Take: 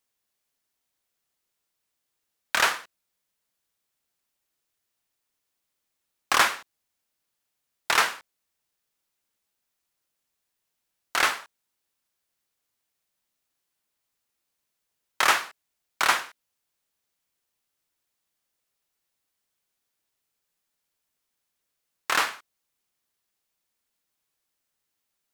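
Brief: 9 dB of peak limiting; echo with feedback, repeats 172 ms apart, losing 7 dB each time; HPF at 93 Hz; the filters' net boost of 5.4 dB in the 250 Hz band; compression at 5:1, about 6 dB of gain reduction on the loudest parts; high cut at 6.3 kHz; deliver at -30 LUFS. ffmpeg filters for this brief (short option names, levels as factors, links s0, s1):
-af "highpass=93,lowpass=6300,equalizer=f=250:t=o:g=7.5,acompressor=threshold=0.0794:ratio=5,alimiter=limit=0.141:level=0:latency=1,aecho=1:1:172|344|516|688|860:0.447|0.201|0.0905|0.0407|0.0183,volume=1.41"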